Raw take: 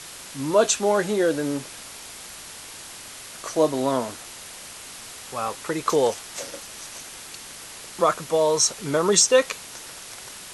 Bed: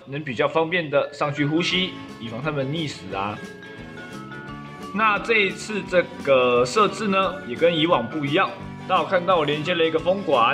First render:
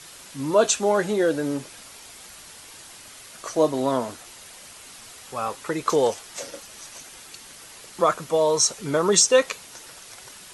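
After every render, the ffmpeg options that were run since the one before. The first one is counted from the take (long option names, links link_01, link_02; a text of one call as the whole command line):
ffmpeg -i in.wav -af "afftdn=noise_reduction=6:noise_floor=-41" out.wav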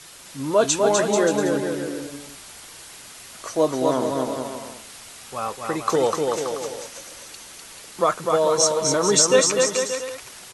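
ffmpeg -i in.wav -af "aecho=1:1:250|437.5|578.1|683.6|762.7:0.631|0.398|0.251|0.158|0.1" out.wav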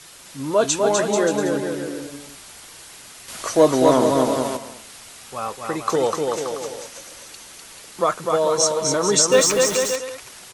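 ffmpeg -i in.wav -filter_complex "[0:a]asettb=1/sr,asplit=3[link_01][link_02][link_03];[link_01]atrim=end=3.284[link_04];[link_02]atrim=start=3.28:end=4.57,asetpts=PTS-STARTPTS,afade=type=in:duration=0.004:curve=qsin,afade=type=out:start_time=1.286:duration=0.004:curve=qsin,acontrast=70[link_05];[link_03]atrim=start=4.566[link_06];[link_04][link_05]acrossfade=duration=0.004:curve1=hsin:curve2=qsin[link_07];[link_07][link_06]acrossfade=duration=0.004:curve1=qsin:curve2=hsin,asettb=1/sr,asplit=3[link_08][link_09][link_10];[link_08]atrim=end=9.324[link_11];[link_09]atrim=start=9.32:end=9.96,asetpts=PTS-STARTPTS,afade=type=in:duration=0.004:curve=qsin,afade=type=out:start_time=0.636:duration=0.004:curve=qsin,aeval=exprs='val(0)+0.5*0.0631*sgn(val(0))':channel_layout=same[link_12];[link_10]atrim=start=9.956[link_13];[link_11][link_12]acrossfade=duration=0.004:curve1=hsin:curve2=qsin[link_14];[link_14][link_13]acrossfade=duration=0.004:curve1=qsin:curve2=hsin" out.wav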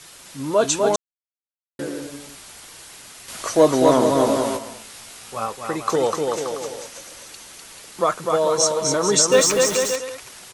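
ffmpeg -i in.wav -filter_complex "[0:a]asettb=1/sr,asplit=3[link_01][link_02][link_03];[link_01]atrim=end=4.194[link_04];[link_02]atrim=start=4.19:end=5.46,asetpts=PTS-STARTPTS,afade=type=in:duration=0.004:curve=qsin,afade=type=out:start_time=1.266:duration=0.004:curve=qsin,asplit=2[link_05][link_06];[link_06]adelay=18,volume=-5dB[link_07];[link_05][link_07]amix=inputs=2:normalize=0,atrim=end_sample=56007[link_08];[link_03]atrim=start=5.456[link_09];[link_04][link_08]acrossfade=duration=0.004:curve1=hsin:curve2=qsin[link_10];[link_10][link_09]acrossfade=duration=0.004:curve1=qsin:curve2=hsin,asplit=3[link_11][link_12][link_13];[link_11]atrim=end=0.96,asetpts=PTS-STARTPTS,afade=type=out:start_time=0.956:duration=0.004:curve=hsin[link_14];[link_12]atrim=start=0.96:end=1.79,asetpts=PTS-STARTPTS,volume=0[link_15];[link_13]atrim=start=1.79,asetpts=PTS-STARTPTS,afade=type=in:duration=0.004:curve=hsin[link_16];[link_14][link_15][link_16]concat=n=3:v=0:a=1" out.wav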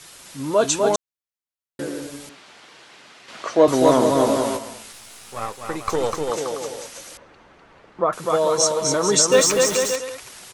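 ffmpeg -i in.wav -filter_complex "[0:a]asettb=1/sr,asplit=3[link_01][link_02][link_03];[link_01]atrim=end=2.294[link_04];[link_02]atrim=start=2.29:end=3.68,asetpts=PTS-STARTPTS,afade=type=in:duration=0.004:curve=qsin,afade=type=out:start_time=1.386:duration=0.004:curve=qsin,highpass=190,lowpass=3600[link_05];[link_03]atrim=start=3.676[link_06];[link_04][link_05]acrossfade=duration=0.004:curve1=hsin:curve2=qsin[link_07];[link_07][link_06]acrossfade=duration=0.004:curve1=qsin:curve2=hsin,asettb=1/sr,asplit=3[link_08][link_09][link_10];[link_08]atrim=end=4.924[link_11];[link_09]atrim=start=4.92:end=6.3,asetpts=PTS-STARTPTS,afade=type=in:duration=0.004:curve=qsin,afade=type=out:start_time=1.376:duration=0.004:curve=qsin,aeval=exprs='if(lt(val(0),0),0.447*val(0),val(0))':channel_layout=same[link_12];[link_10]atrim=start=6.296[link_13];[link_11][link_12]acrossfade=duration=0.004:curve1=hsin:curve2=qsin[link_14];[link_14][link_13]acrossfade=duration=0.004:curve1=qsin:curve2=hsin,asettb=1/sr,asplit=3[link_15][link_16][link_17];[link_15]atrim=end=7.174[link_18];[link_16]atrim=start=7.17:end=8.13,asetpts=PTS-STARTPTS,afade=type=in:duration=0.004:curve=qsin,afade=type=out:start_time=0.956:duration=0.004:curve=qsin,lowpass=1400[link_19];[link_17]atrim=start=8.126[link_20];[link_18][link_19]acrossfade=duration=0.004:curve1=hsin:curve2=qsin[link_21];[link_21][link_20]acrossfade=duration=0.004:curve1=qsin:curve2=hsin" out.wav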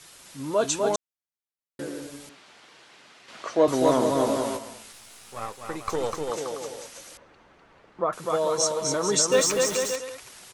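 ffmpeg -i in.wav -af "volume=-5.5dB" out.wav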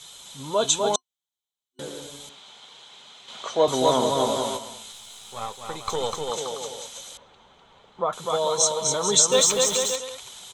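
ffmpeg -i in.wav -af "superequalizer=6b=0.447:9b=1.58:11b=0.631:13b=3.55:15b=2" out.wav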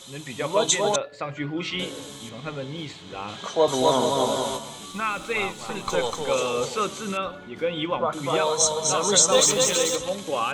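ffmpeg -i in.wav -i bed.wav -filter_complex "[1:a]volume=-8dB[link_01];[0:a][link_01]amix=inputs=2:normalize=0" out.wav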